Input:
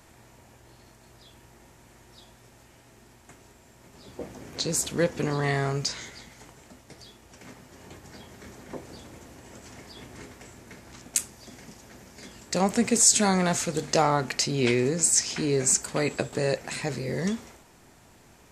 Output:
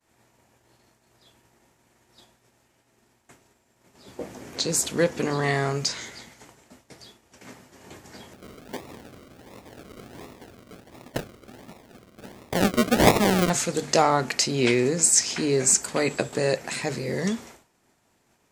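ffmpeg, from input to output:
ffmpeg -i in.wav -filter_complex "[0:a]asettb=1/sr,asplit=3[link_01][link_02][link_03];[link_01]atrim=end=8.334[link_04];[link_02]atrim=start=8.33:end=13.5,asetpts=PTS-STARTPTS,afade=type=in:duration=0.004:curve=qsin,afade=type=out:start_time=5.166:duration=0.004:curve=qsin,acrusher=samples=40:mix=1:aa=0.000001:lfo=1:lforange=24:lforate=1.4[link_05];[link_03]atrim=start=13.496[link_06];[link_04][link_05]acrossfade=duration=0.004:curve1=hsin:curve2=qsin[link_07];[link_07][link_06]acrossfade=duration=0.004:curve1=qsin:curve2=hsin,agate=range=-33dB:threshold=-45dB:ratio=3:detection=peak,lowshelf=frequency=82:gain=-10.5,bandreject=frequency=50:width_type=h:width=6,bandreject=frequency=100:width_type=h:width=6,bandreject=frequency=150:width_type=h:width=6,volume=3dB" out.wav

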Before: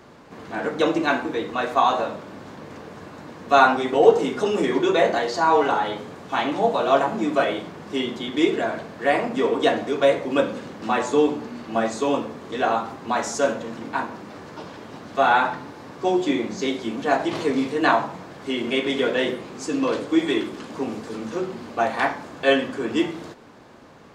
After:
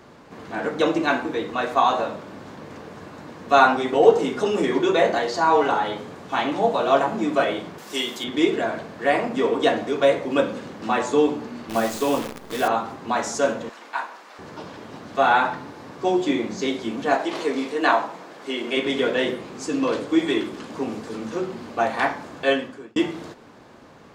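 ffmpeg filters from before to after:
ffmpeg -i in.wav -filter_complex "[0:a]asettb=1/sr,asplit=3[link_01][link_02][link_03];[link_01]atrim=end=7.784[link_04];[link_02]atrim=start=7.78:end=8.24,asetpts=PTS-STARTPTS,afade=type=in:duration=0.004:curve=qsin,afade=type=out:start_time=0.456:duration=0.004:curve=qsin,aemphasis=mode=production:type=riaa[link_05];[link_03]atrim=start=8.236[link_06];[link_04][link_05]acrossfade=duration=0.004:curve1=hsin:curve2=qsin[link_07];[link_07][link_06]acrossfade=duration=0.004:curve1=qsin:curve2=hsin,asettb=1/sr,asplit=3[link_08][link_09][link_10];[link_08]atrim=end=11.694[link_11];[link_09]atrim=start=11.69:end=12.68,asetpts=PTS-STARTPTS,afade=type=in:duration=0.004:curve=qsin,afade=type=out:start_time=0.986:duration=0.004:curve=qsin,acrusher=bits=6:dc=4:mix=0:aa=0.000001[link_12];[link_10]atrim=start=12.676[link_13];[link_11][link_12]acrossfade=duration=0.004:curve1=hsin:curve2=qsin[link_14];[link_14][link_13]acrossfade=duration=0.004:curve1=qsin:curve2=hsin,asettb=1/sr,asplit=3[link_15][link_16][link_17];[link_15]atrim=end=13.694[link_18];[link_16]atrim=start=13.69:end=14.39,asetpts=PTS-STARTPTS,afade=type=in:duration=0.004:curve=qsin,afade=type=out:start_time=0.696:duration=0.004:curve=qsin,highpass=810[link_19];[link_17]atrim=start=14.386[link_20];[link_18][link_19]acrossfade=duration=0.004:curve1=hsin:curve2=qsin[link_21];[link_21][link_20]acrossfade=duration=0.004:curve1=qsin:curve2=hsin,asettb=1/sr,asplit=3[link_22][link_23][link_24];[link_22]atrim=end=17.154[link_25];[link_23]atrim=start=17.15:end=18.77,asetpts=PTS-STARTPTS,afade=type=in:duration=0.004:curve=qsin,afade=type=out:start_time=1.616:duration=0.004:curve=qsin,highpass=300[link_26];[link_24]atrim=start=18.766[link_27];[link_25][link_26]acrossfade=duration=0.004:curve1=hsin:curve2=qsin[link_28];[link_28][link_27]acrossfade=duration=0.004:curve1=qsin:curve2=hsin,asplit=2[link_29][link_30];[link_29]atrim=end=22.96,asetpts=PTS-STARTPTS,afade=type=out:start_time=22.37:duration=0.59[link_31];[link_30]atrim=start=22.96,asetpts=PTS-STARTPTS,afade=type=in:duration=0.004:curve=hsin[link_32];[link_31][link_32]concat=n=2:v=0:a=1" out.wav

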